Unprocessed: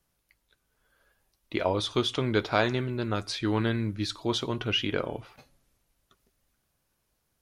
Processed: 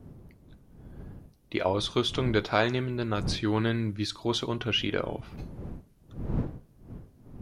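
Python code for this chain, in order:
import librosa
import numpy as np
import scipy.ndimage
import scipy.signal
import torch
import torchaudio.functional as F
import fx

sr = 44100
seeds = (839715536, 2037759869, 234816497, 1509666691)

y = fx.dmg_wind(x, sr, seeds[0], corner_hz=180.0, level_db=-40.0)
y = fx.end_taper(y, sr, db_per_s=450.0)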